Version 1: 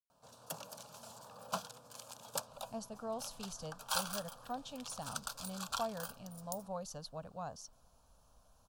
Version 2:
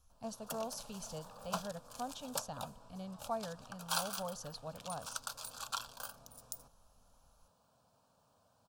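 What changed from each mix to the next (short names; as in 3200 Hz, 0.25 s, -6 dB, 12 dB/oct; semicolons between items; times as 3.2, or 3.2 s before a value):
speech: entry -2.50 s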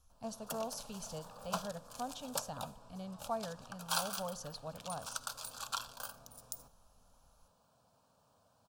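reverb: on, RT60 0.70 s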